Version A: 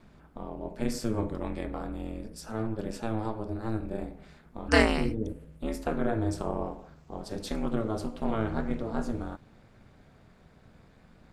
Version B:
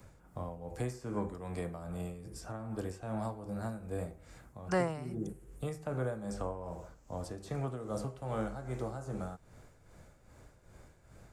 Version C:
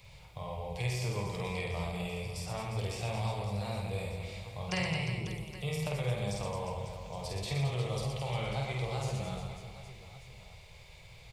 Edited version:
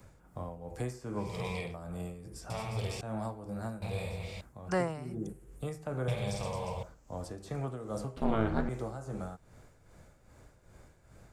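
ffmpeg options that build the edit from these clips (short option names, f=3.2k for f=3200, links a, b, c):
-filter_complex "[2:a]asplit=4[a][b][c][d];[1:a]asplit=6[e][f][g][h][i][j];[e]atrim=end=1.38[k];[a]atrim=start=1.14:end=1.78[l];[f]atrim=start=1.54:end=2.502[m];[b]atrim=start=2.498:end=3.012[n];[g]atrim=start=3.008:end=3.822[o];[c]atrim=start=3.818:end=4.412[p];[h]atrim=start=4.408:end=6.082[q];[d]atrim=start=6.078:end=6.832[r];[i]atrim=start=6.828:end=8.172[s];[0:a]atrim=start=8.168:end=8.692[t];[j]atrim=start=8.688[u];[k][l]acrossfade=d=0.24:c1=tri:c2=tri[v];[v][m]acrossfade=d=0.24:c1=tri:c2=tri[w];[w][n]acrossfade=d=0.004:c1=hsin:c2=hsin[x];[x][o]acrossfade=d=0.004:c1=hsin:c2=hsin[y];[y][p]acrossfade=d=0.004:c1=hsin:c2=hsin[z];[z][q]acrossfade=d=0.004:c1=hsin:c2=hsin[aa];[aa][r]acrossfade=d=0.004:c1=hsin:c2=hsin[ab];[ab][s]acrossfade=d=0.004:c1=hsin:c2=hsin[ac];[ac][t]acrossfade=d=0.004:c1=hsin:c2=hsin[ad];[ad][u]acrossfade=d=0.004:c1=hsin:c2=hsin"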